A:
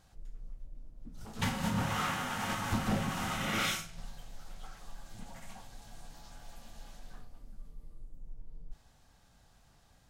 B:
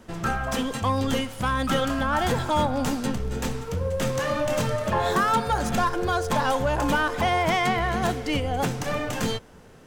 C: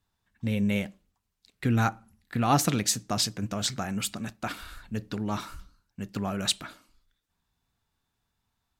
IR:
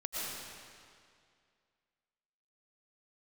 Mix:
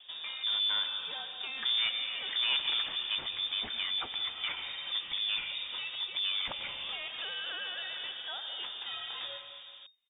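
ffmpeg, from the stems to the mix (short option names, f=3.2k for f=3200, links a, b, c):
-filter_complex "[0:a]adelay=150,volume=-19dB[a];[1:a]equalizer=f=1.5k:w=2.5:g=-10,acrossover=split=1400|2800[b][c][d];[b]acompressor=threshold=-37dB:ratio=4[e];[c]acompressor=threshold=-41dB:ratio=4[f];[d]acompressor=threshold=-45dB:ratio=4[g];[e][f][g]amix=inputs=3:normalize=0,volume=-6dB,asplit=2[h][i];[i]volume=-7.5dB[j];[2:a]volume=-1.5dB,asplit=3[k][l][m];[l]volume=-11.5dB[n];[m]apad=whole_len=434958[o];[h][o]sidechaincompress=threshold=-47dB:ratio=8:attack=16:release=220[p];[3:a]atrim=start_sample=2205[q];[j][n]amix=inputs=2:normalize=0[r];[r][q]afir=irnorm=-1:irlink=0[s];[a][p][k][s]amix=inputs=4:normalize=0,asoftclip=type=tanh:threshold=-27dB,lowpass=f=3.1k:t=q:w=0.5098,lowpass=f=3.1k:t=q:w=0.6013,lowpass=f=3.1k:t=q:w=0.9,lowpass=f=3.1k:t=q:w=2.563,afreqshift=-3700"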